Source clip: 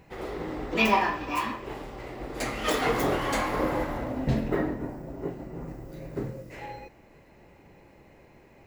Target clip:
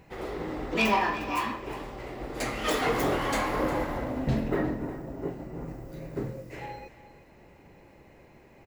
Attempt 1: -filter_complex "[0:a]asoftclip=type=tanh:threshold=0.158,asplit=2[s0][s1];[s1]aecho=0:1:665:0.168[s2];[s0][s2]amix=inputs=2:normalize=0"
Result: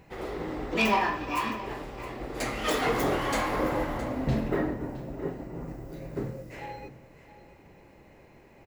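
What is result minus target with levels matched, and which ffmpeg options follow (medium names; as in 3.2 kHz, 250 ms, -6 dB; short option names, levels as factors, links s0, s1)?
echo 309 ms late
-filter_complex "[0:a]asoftclip=type=tanh:threshold=0.158,asplit=2[s0][s1];[s1]aecho=0:1:356:0.168[s2];[s0][s2]amix=inputs=2:normalize=0"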